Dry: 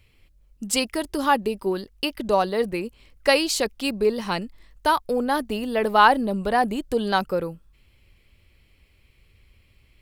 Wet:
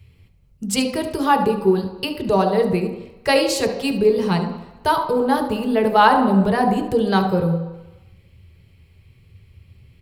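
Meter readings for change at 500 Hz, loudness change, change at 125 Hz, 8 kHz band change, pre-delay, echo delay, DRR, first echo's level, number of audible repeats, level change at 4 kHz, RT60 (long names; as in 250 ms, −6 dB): +5.0 dB, +4.0 dB, +12.5 dB, 0.0 dB, 3 ms, 72 ms, 2.5 dB, −12.5 dB, 1, +0.5 dB, 1.0 s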